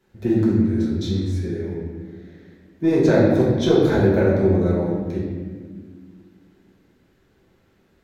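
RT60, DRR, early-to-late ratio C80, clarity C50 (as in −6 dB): 1.7 s, −7.5 dB, 2.5 dB, 0.0 dB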